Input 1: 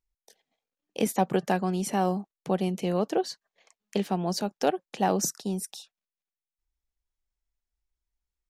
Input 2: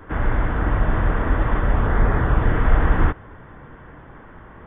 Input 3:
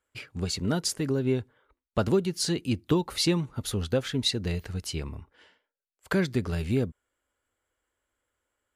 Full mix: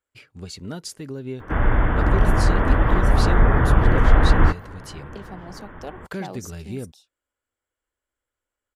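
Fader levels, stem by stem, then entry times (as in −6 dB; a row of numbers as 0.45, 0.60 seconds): −11.5, +2.0, −6.0 decibels; 1.20, 1.40, 0.00 seconds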